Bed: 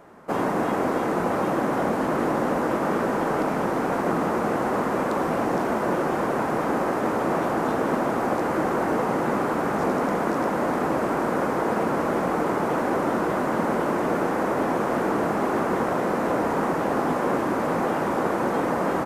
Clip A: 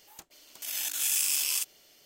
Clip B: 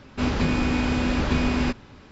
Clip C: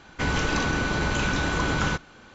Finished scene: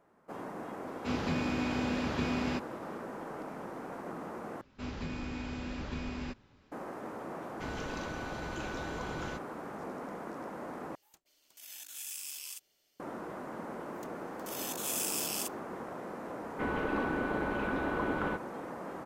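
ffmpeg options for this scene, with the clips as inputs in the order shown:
ffmpeg -i bed.wav -i cue0.wav -i cue1.wav -i cue2.wav -filter_complex "[2:a]asplit=2[link_01][link_02];[3:a]asplit=2[link_03][link_04];[1:a]asplit=2[link_05][link_06];[0:a]volume=-18dB[link_07];[link_01]highpass=100[link_08];[link_06]agate=range=-33dB:threshold=-49dB:ratio=3:release=100:detection=peak[link_09];[link_04]firequalizer=gain_entry='entry(150,0);entry(220,11);entry(430,13);entry(6500,-22)':delay=0.05:min_phase=1[link_10];[link_07]asplit=3[link_11][link_12][link_13];[link_11]atrim=end=4.614[link_14];[link_02]atrim=end=2.11,asetpts=PTS-STARTPTS,volume=-16dB[link_15];[link_12]atrim=start=6.716:end=10.954[link_16];[link_05]atrim=end=2.05,asetpts=PTS-STARTPTS,volume=-15dB[link_17];[link_13]atrim=start=12.996[link_18];[link_08]atrim=end=2.11,asetpts=PTS-STARTPTS,volume=-9dB,afade=type=in:duration=0.004:curve=hsin,afade=type=out:start_time=2.106:duration=0.004:curve=hsin,adelay=870[link_19];[link_03]atrim=end=2.34,asetpts=PTS-STARTPTS,volume=-16.5dB,afade=type=in:duration=0.004:curve=hsin,afade=type=out:start_time=2.336:duration=0.004:curve=hsin,adelay=7410[link_20];[link_09]atrim=end=2.05,asetpts=PTS-STARTPTS,volume=-7.5dB,afade=type=in:duration=0.004:curve=hsin,afade=type=out:start_time=2.046:duration=0.004:curve=hsin,adelay=13840[link_21];[link_10]atrim=end=2.34,asetpts=PTS-STARTPTS,volume=-16.5dB,afade=type=in:duration=0.004:curve=hsin,afade=type=out:start_time=2.336:duration=0.004:curve=hsin,adelay=16400[link_22];[link_14][link_15]acrossfade=duration=0.004:curve1=hsin:curve2=hsin[link_23];[link_23][link_16]acrossfade=duration=0.004:curve1=hsin:curve2=hsin[link_24];[link_24][link_17]acrossfade=duration=0.004:curve1=hsin:curve2=hsin[link_25];[link_25][link_18]acrossfade=duration=0.004:curve1=hsin:curve2=hsin[link_26];[link_26][link_19][link_20][link_21][link_22]amix=inputs=5:normalize=0" out.wav

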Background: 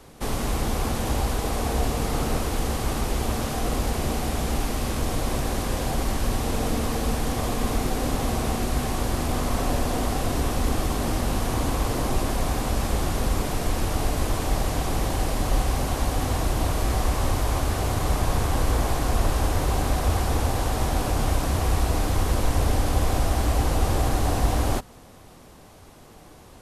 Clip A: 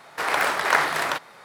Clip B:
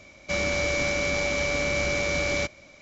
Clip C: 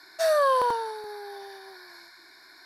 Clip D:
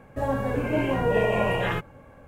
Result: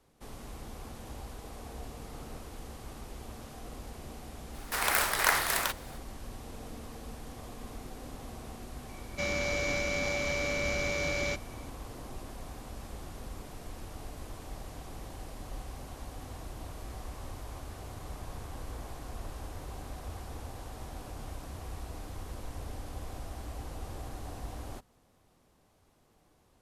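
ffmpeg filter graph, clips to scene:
ffmpeg -i bed.wav -i cue0.wav -i cue1.wav -filter_complex "[0:a]volume=-19dB[link_01];[1:a]aemphasis=mode=production:type=75fm,atrim=end=1.44,asetpts=PTS-STARTPTS,volume=-8dB,afade=type=in:duration=0.004:curve=hsin,afade=type=out:start_time=1.436:duration=0.004:curve=hsin,adelay=4540[link_02];[2:a]atrim=end=2.81,asetpts=PTS-STARTPTS,volume=-6dB,afade=type=in:duration=0.004:curve=hsin,afade=type=out:start_time=2.806:duration=0.004:curve=hsin,adelay=8890[link_03];[link_01][link_02][link_03]amix=inputs=3:normalize=0" out.wav

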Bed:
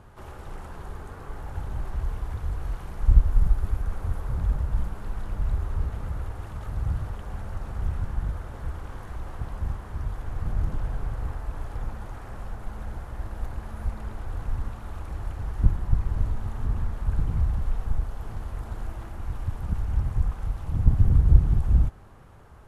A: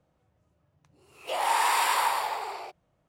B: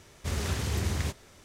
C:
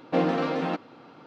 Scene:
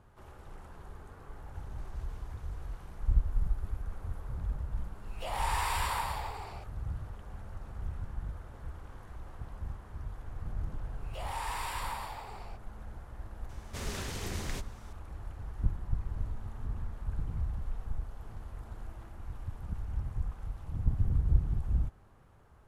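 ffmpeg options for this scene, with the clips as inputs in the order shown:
ffmpeg -i bed.wav -i cue0.wav -i cue1.wav -filter_complex "[2:a]asplit=2[link_01][link_02];[1:a]asplit=2[link_03][link_04];[0:a]volume=-10dB[link_05];[link_01]acompressor=threshold=-45dB:ratio=6:attack=7.6:release=105:knee=1:detection=peak[link_06];[link_04]asoftclip=type=tanh:threshold=-14.5dB[link_07];[link_02]highpass=frequency=170:poles=1[link_08];[link_06]atrim=end=1.44,asetpts=PTS-STARTPTS,volume=-16dB,afade=type=in:duration=0.004:curve=hsin,afade=type=out:start_time=1.436:duration=0.004:curve=hsin,adelay=1540[link_09];[link_03]atrim=end=3.08,asetpts=PTS-STARTPTS,volume=-8.5dB,afade=type=in:duration=0.004:curve=hsin,afade=type=out:start_time=3.076:duration=0.004:curve=hsin,adelay=173313S[link_10];[link_07]atrim=end=3.08,asetpts=PTS-STARTPTS,volume=-12.5dB,afade=type=in:duration=0.004:curve=hsin,afade=type=out:start_time=3.076:duration=0.004:curve=hsin,adelay=434826S[link_11];[link_08]atrim=end=1.44,asetpts=PTS-STARTPTS,volume=-4.5dB,afade=type=in:duration=0.004:curve=hsin,afade=type=out:start_time=1.436:duration=0.004:curve=hsin,adelay=13490[link_12];[link_05][link_09][link_10][link_11][link_12]amix=inputs=5:normalize=0" out.wav

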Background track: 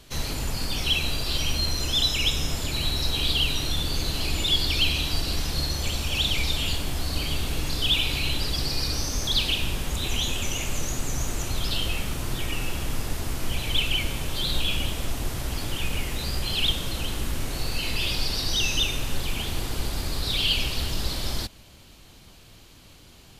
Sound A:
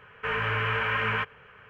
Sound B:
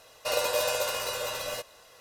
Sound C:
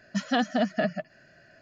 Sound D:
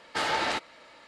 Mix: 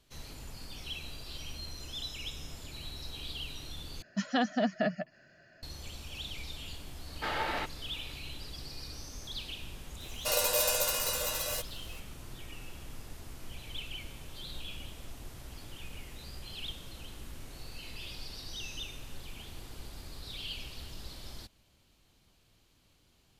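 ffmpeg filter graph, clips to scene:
ffmpeg -i bed.wav -i cue0.wav -i cue1.wav -i cue2.wav -i cue3.wav -filter_complex "[0:a]volume=-17dB[link_01];[4:a]lowpass=3700[link_02];[2:a]crystalizer=i=2:c=0[link_03];[link_01]asplit=2[link_04][link_05];[link_04]atrim=end=4.024[link_06];[3:a]atrim=end=1.61,asetpts=PTS-STARTPTS,volume=-4dB[link_07];[link_05]atrim=start=5.626[link_08];[link_02]atrim=end=1.07,asetpts=PTS-STARTPTS,volume=-5.5dB,afade=type=in:duration=0.004:curve=hsin,afade=type=out:start_time=1.066:duration=0.004:curve=hsin,adelay=7070[link_09];[link_03]atrim=end=2,asetpts=PTS-STARTPTS,volume=-5dB,afade=type=in:duration=0.004:curve=hsin,afade=type=out:start_time=1.996:duration=0.004:curve=hsin,adelay=10000[link_10];[link_06][link_07]acrossfade=duration=0.004:curve1=hsin:curve2=hsin[link_11];[link_11][link_08]acrossfade=duration=0.004:curve1=hsin:curve2=hsin[link_12];[link_12][link_09][link_10]amix=inputs=3:normalize=0" out.wav

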